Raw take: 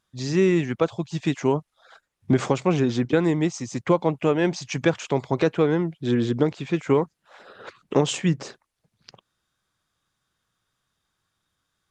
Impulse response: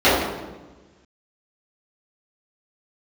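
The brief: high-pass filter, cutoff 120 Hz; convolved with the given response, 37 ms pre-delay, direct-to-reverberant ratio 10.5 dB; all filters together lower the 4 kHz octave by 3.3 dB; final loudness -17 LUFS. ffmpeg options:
-filter_complex "[0:a]highpass=120,equalizer=f=4000:t=o:g=-4.5,asplit=2[s0][s1];[1:a]atrim=start_sample=2205,adelay=37[s2];[s1][s2]afir=irnorm=-1:irlink=0,volume=0.0141[s3];[s0][s3]amix=inputs=2:normalize=0,volume=2.11"

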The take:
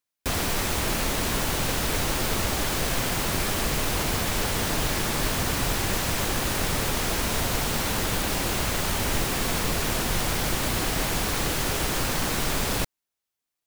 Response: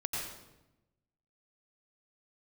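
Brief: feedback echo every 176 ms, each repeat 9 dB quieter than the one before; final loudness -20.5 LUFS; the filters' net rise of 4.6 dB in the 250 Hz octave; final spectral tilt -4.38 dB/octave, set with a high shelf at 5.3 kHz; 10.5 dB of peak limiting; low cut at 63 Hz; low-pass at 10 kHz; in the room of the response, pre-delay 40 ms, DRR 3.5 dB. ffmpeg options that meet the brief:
-filter_complex "[0:a]highpass=63,lowpass=10000,equalizer=f=250:t=o:g=6,highshelf=f=5300:g=-7,alimiter=limit=0.0708:level=0:latency=1,aecho=1:1:176|352|528|704:0.355|0.124|0.0435|0.0152,asplit=2[s0][s1];[1:a]atrim=start_sample=2205,adelay=40[s2];[s1][s2]afir=irnorm=-1:irlink=0,volume=0.422[s3];[s0][s3]amix=inputs=2:normalize=0,volume=2.82"

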